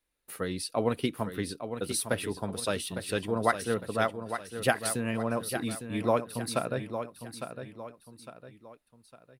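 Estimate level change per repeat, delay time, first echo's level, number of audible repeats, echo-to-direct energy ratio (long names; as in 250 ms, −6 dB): −8.0 dB, 856 ms, −9.0 dB, 3, −8.5 dB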